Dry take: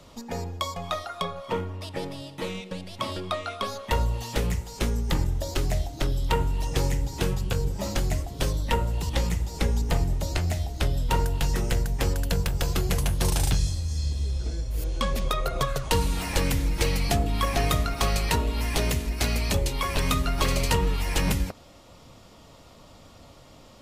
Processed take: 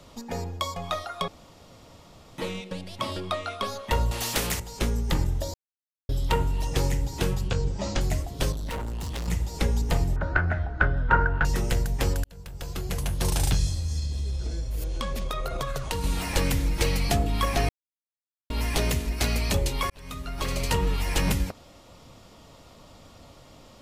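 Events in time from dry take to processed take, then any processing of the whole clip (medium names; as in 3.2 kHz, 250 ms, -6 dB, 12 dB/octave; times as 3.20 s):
1.28–2.38 s: room tone
4.11–4.60 s: spectrum-flattening compressor 2:1
5.54–6.09 s: mute
7.48–8.01 s: low-pass 7.2 kHz 24 dB/octave
8.52–9.28 s: overload inside the chain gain 29.5 dB
10.16–11.45 s: resonant low-pass 1.5 kHz, resonance Q 12
12.24–13.46 s: fade in
13.99–16.04 s: compression, threshold -25 dBFS
17.69–18.50 s: mute
19.90–20.93 s: fade in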